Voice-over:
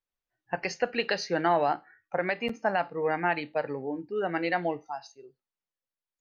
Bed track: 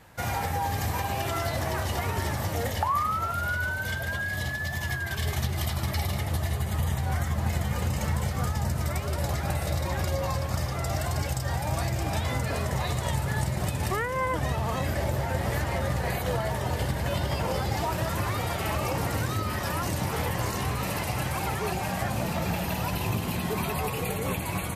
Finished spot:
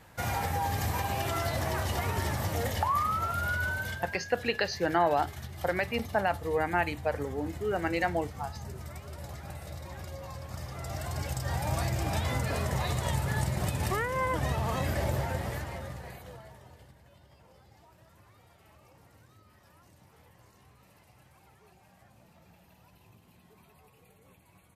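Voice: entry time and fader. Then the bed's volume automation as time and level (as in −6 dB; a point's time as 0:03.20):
3.50 s, −1.0 dB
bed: 0:03.78 −2 dB
0:04.19 −13.5 dB
0:10.29 −13.5 dB
0:11.63 −2 dB
0:15.18 −2 dB
0:17.10 −30.5 dB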